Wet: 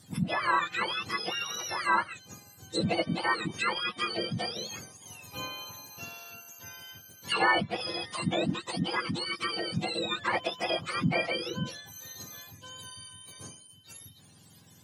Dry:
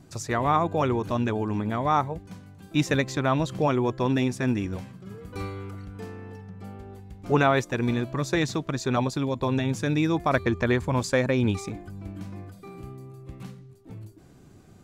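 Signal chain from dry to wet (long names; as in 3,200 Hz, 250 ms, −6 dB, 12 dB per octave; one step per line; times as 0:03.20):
frequency axis turned over on the octave scale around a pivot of 1,100 Hz
treble cut that deepens with the level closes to 2,800 Hz, closed at −25 dBFS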